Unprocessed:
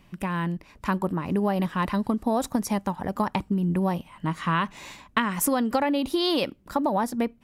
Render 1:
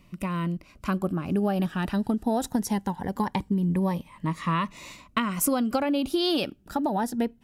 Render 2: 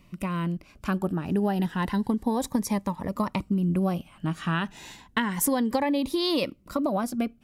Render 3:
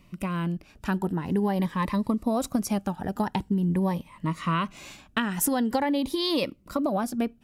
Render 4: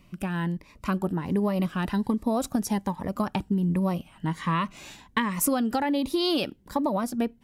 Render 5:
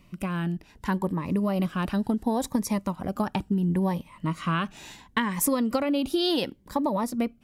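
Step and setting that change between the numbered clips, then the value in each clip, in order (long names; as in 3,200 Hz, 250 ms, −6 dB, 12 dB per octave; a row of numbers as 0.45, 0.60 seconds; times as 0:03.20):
phaser whose notches keep moving one way, speed: 0.21, 0.31, 0.46, 1.3, 0.71 Hertz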